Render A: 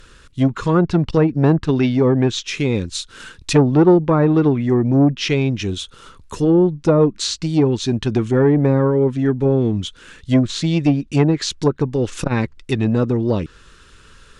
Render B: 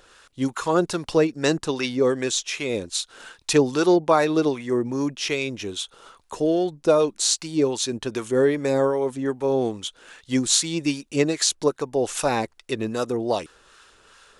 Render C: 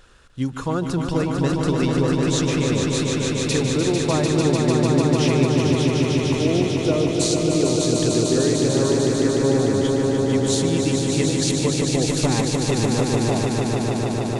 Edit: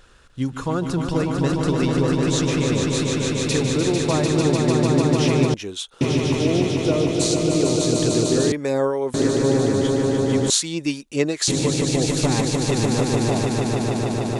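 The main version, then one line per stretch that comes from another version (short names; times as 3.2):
C
5.54–6.01 from B
8.52–9.14 from B
10.5–11.48 from B
not used: A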